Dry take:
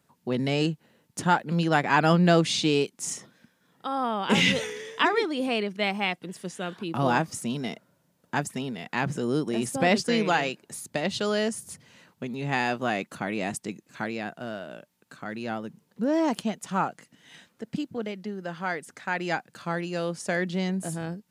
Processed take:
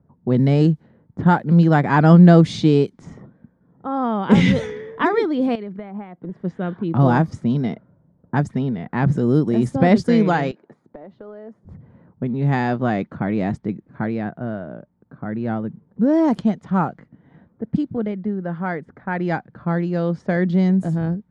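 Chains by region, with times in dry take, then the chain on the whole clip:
5.55–6.41 HPF 180 Hz 6 dB/oct + compressor, threshold -35 dBFS
10.51–11.65 HPF 350 Hz + compressor 12:1, threshold -39 dBFS
whole clip: RIAA curve playback; low-pass opened by the level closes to 900 Hz, open at -16.5 dBFS; bell 2700 Hz -10 dB 0.25 oct; gain +3.5 dB

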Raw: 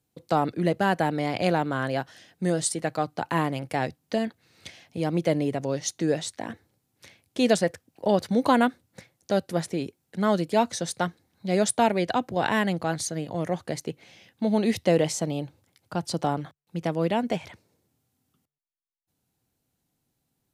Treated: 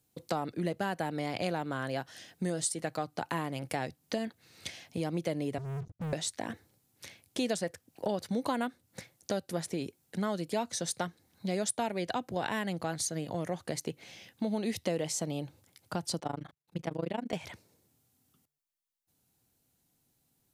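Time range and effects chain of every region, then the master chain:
5.58–6.13 inverse Chebyshev low-pass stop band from 620 Hz, stop band 70 dB + sample leveller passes 5
16.19–17.33 HPF 51 Hz + high shelf 5300 Hz -8 dB + AM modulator 26 Hz, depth 95%
whole clip: high shelf 4900 Hz +6.5 dB; compressor 3:1, threshold -32 dBFS

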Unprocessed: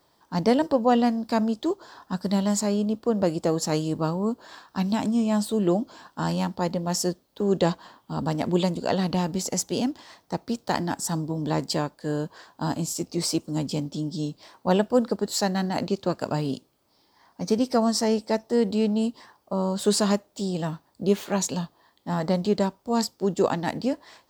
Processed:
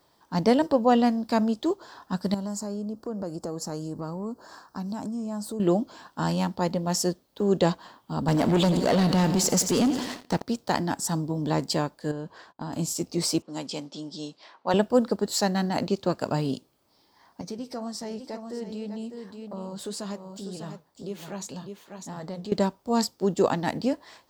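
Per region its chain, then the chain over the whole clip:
2.34–5.6 band shelf 2700 Hz -12 dB 1.2 oct + compressor 3:1, threshold -32 dBFS
8.28–10.42 feedback echo 87 ms, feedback 58%, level -15.5 dB + sample leveller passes 3 + compressor 2:1, threshold -23 dBFS
12.11–12.73 gate -55 dBFS, range -22 dB + high shelf 6700 Hz -12 dB + compressor, threshold -30 dBFS
13.42–14.74 low-pass opened by the level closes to 2500 Hz, open at -22.5 dBFS + weighting filter A
17.41–22.52 echo 0.599 s -11 dB + compressor 2:1, threshold -33 dBFS + flange 1.9 Hz, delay 2.6 ms, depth 7.5 ms, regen -76%
whole clip: dry

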